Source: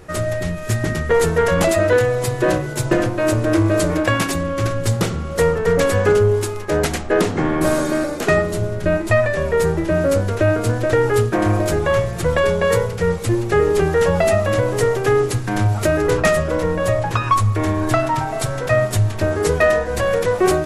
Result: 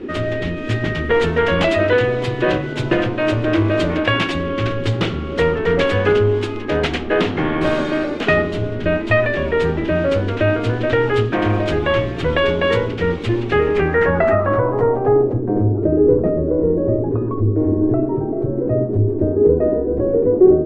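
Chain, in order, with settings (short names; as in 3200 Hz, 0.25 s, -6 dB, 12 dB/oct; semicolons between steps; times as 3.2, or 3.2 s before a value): band noise 220–420 Hz -28 dBFS; low-pass sweep 3100 Hz -> 410 Hz, 13.5–15.74; gain -1 dB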